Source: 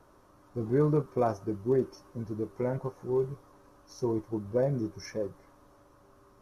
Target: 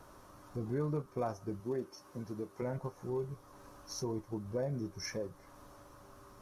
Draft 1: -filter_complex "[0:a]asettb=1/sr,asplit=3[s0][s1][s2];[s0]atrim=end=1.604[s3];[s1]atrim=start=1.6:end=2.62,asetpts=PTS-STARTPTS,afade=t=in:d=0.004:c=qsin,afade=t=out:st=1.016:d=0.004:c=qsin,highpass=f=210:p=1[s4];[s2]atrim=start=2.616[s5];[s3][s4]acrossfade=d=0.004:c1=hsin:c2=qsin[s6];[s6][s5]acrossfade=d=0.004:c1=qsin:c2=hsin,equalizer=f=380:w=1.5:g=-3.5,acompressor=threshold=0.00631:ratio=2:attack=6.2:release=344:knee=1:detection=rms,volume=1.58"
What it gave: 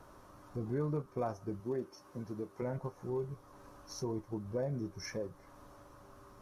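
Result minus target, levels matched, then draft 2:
8 kHz band -3.5 dB
-filter_complex "[0:a]asettb=1/sr,asplit=3[s0][s1][s2];[s0]atrim=end=1.604[s3];[s1]atrim=start=1.6:end=2.62,asetpts=PTS-STARTPTS,afade=t=in:d=0.004:c=qsin,afade=t=out:st=1.016:d=0.004:c=qsin,highpass=f=210:p=1[s4];[s2]atrim=start=2.616[s5];[s3][s4]acrossfade=d=0.004:c1=hsin:c2=qsin[s6];[s6][s5]acrossfade=d=0.004:c1=qsin:c2=hsin,equalizer=f=380:w=1.5:g=-3.5,acompressor=threshold=0.00631:ratio=2:attack=6.2:release=344:knee=1:detection=rms,highshelf=f=3100:g=4.5,volume=1.58"

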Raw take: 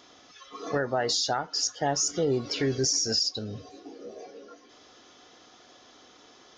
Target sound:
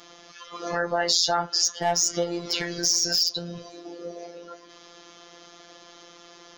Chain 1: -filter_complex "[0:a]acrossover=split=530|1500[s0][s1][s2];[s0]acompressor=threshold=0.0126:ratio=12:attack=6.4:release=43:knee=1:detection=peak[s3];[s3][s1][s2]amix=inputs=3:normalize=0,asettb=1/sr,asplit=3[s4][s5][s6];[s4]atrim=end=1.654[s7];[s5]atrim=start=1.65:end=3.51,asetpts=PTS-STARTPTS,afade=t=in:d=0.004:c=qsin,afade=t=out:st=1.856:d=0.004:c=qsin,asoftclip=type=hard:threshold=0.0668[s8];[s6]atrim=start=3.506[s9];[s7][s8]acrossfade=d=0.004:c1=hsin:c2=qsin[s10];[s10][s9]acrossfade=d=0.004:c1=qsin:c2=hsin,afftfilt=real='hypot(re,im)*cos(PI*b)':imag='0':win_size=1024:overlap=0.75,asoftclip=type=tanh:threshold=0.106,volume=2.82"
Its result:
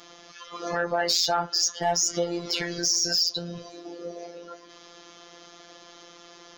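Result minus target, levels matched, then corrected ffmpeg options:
saturation: distortion +15 dB
-filter_complex "[0:a]acrossover=split=530|1500[s0][s1][s2];[s0]acompressor=threshold=0.0126:ratio=12:attack=6.4:release=43:knee=1:detection=peak[s3];[s3][s1][s2]amix=inputs=3:normalize=0,asettb=1/sr,asplit=3[s4][s5][s6];[s4]atrim=end=1.654[s7];[s5]atrim=start=1.65:end=3.51,asetpts=PTS-STARTPTS,afade=t=in:d=0.004:c=qsin,afade=t=out:st=1.856:d=0.004:c=qsin,asoftclip=type=hard:threshold=0.0668[s8];[s6]atrim=start=3.506[s9];[s7][s8]acrossfade=d=0.004:c1=hsin:c2=qsin[s10];[s10][s9]acrossfade=d=0.004:c1=qsin:c2=hsin,afftfilt=real='hypot(re,im)*cos(PI*b)':imag='0':win_size=1024:overlap=0.75,asoftclip=type=tanh:threshold=0.316,volume=2.82"

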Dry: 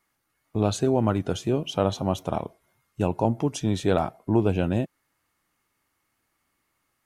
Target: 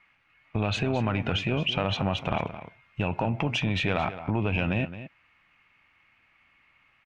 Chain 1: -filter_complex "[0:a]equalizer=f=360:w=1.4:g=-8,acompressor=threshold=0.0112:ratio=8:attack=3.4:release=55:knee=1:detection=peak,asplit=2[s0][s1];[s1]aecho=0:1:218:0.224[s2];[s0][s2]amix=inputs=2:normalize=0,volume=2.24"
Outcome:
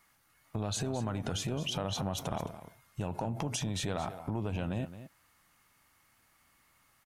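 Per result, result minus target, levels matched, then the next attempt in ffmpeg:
2 kHz band -7.0 dB; compression: peak gain reduction +7 dB
-filter_complex "[0:a]lowpass=f=2500:t=q:w=4.9,equalizer=f=360:w=1.4:g=-8,acompressor=threshold=0.0112:ratio=8:attack=3.4:release=55:knee=1:detection=peak,asplit=2[s0][s1];[s1]aecho=0:1:218:0.224[s2];[s0][s2]amix=inputs=2:normalize=0,volume=2.24"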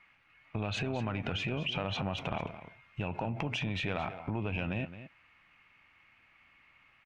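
compression: peak gain reduction +8 dB
-filter_complex "[0:a]lowpass=f=2500:t=q:w=4.9,equalizer=f=360:w=1.4:g=-8,acompressor=threshold=0.0316:ratio=8:attack=3.4:release=55:knee=1:detection=peak,asplit=2[s0][s1];[s1]aecho=0:1:218:0.224[s2];[s0][s2]amix=inputs=2:normalize=0,volume=2.24"

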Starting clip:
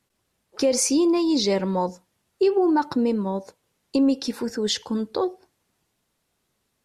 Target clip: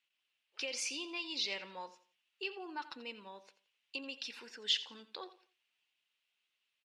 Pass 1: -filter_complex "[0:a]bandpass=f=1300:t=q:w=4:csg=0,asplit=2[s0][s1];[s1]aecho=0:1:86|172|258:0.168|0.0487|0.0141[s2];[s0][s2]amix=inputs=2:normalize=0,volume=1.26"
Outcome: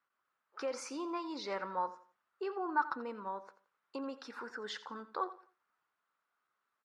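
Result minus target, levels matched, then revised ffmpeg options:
1 kHz band +12.0 dB
-filter_complex "[0:a]bandpass=f=2800:t=q:w=4:csg=0,asplit=2[s0][s1];[s1]aecho=0:1:86|172|258:0.168|0.0487|0.0141[s2];[s0][s2]amix=inputs=2:normalize=0,volume=1.26"

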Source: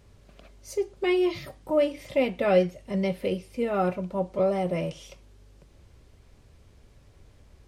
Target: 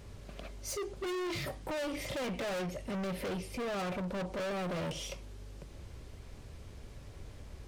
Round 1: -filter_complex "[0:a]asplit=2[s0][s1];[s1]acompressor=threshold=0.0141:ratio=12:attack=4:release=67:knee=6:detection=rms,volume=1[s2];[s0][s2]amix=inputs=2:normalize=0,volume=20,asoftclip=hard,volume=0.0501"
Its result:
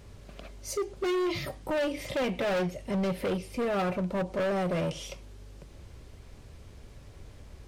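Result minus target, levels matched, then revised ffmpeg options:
overload inside the chain: distortion -4 dB
-filter_complex "[0:a]asplit=2[s0][s1];[s1]acompressor=threshold=0.0141:ratio=12:attack=4:release=67:knee=6:detection=rms,volume=1[s2];[s0][s2]amix=inputs=2:normalize=0,volume=53.1,asoftclip=hard,volume=0.0188"

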